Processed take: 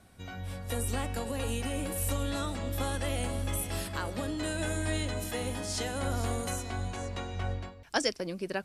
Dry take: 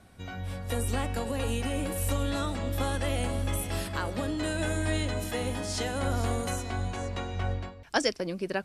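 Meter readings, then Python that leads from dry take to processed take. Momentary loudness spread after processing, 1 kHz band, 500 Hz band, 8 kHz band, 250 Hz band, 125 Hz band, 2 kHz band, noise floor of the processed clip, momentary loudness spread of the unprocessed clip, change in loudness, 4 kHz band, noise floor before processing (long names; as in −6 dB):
5 LU, −3.0 dB, −3.0 dB, +0.5 dB, −3.0 dB, −3.0 dB, −2.5 dB, −49 dBFS, 5 LU, −2.5 dB, −1.5 dB, −46 dBFS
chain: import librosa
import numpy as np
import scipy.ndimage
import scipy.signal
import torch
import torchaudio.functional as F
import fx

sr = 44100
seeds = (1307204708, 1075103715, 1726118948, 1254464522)

y = fx.high_shelf(x, sr, hz=5700.0, db=5.0)
y = y * librosa.db_to_amplitude(-3.0)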